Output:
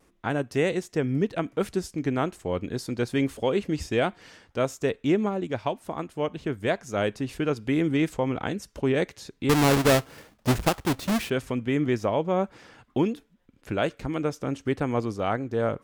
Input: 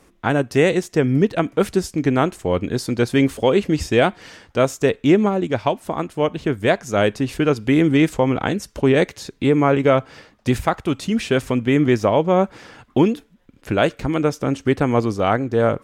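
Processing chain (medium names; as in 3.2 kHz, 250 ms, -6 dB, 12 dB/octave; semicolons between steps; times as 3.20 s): 9.49–11.30 s: square wave that keeps the level; vibrato 0.42 Hz 11 cents; trim -8.5 dB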